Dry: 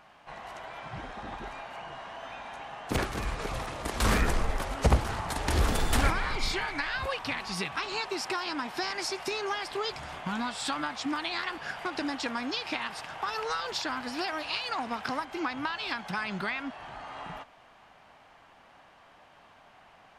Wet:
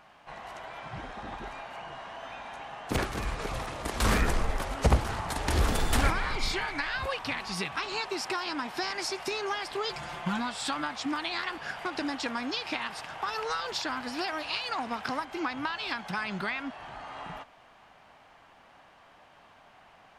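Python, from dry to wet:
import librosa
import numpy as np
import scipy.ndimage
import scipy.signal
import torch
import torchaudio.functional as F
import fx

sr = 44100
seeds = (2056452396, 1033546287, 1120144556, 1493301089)

y = fx.comb(x, sr, ms=5.8, depth=0.74, at=(9.89, 10.39))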